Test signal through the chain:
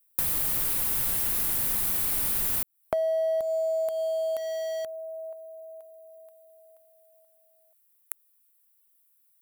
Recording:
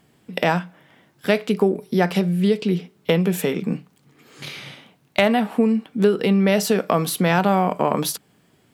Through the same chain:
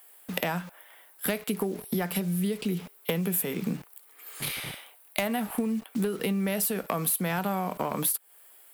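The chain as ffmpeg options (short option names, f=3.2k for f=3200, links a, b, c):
-filter_complex "[0:a]acrossover=split=420|2000[a][b][c];[a]acrusher=bits=6:mix=0:aa=0.000001[d];[b]aemphasis=mode=production:type=riaa[e];[c]aexciter=amount=7.5:drive=6.1:freq=8.7k[f];[d][e][f]amix=inputs=3:normalize=0,volume=10dB,asoftclip=hard,volume=-10dB,acompressor=threshold=-26dB:ratio=6"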